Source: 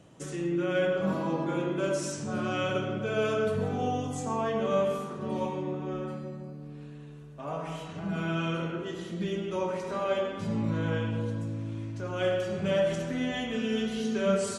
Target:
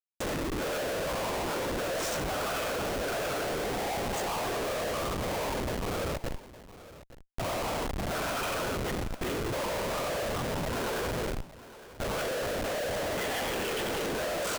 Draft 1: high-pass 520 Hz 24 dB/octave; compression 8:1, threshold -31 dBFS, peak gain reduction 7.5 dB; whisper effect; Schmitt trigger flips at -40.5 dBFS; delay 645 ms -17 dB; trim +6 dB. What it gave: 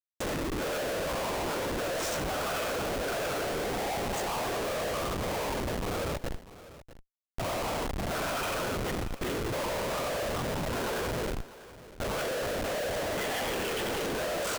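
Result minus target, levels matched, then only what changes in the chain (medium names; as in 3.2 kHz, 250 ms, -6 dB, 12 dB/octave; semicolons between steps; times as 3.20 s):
echo 216 ms early
change: delay 861 ms -17 dB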